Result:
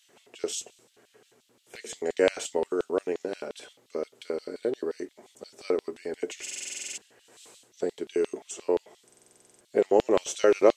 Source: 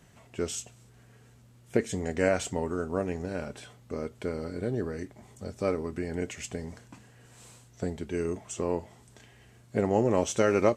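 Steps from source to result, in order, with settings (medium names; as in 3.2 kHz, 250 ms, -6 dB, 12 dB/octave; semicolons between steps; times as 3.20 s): LFO high-pass square 5.7 Hz 390–3400 Hz; buffer glitch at 6.42/9.05 s, samples 2048, times 11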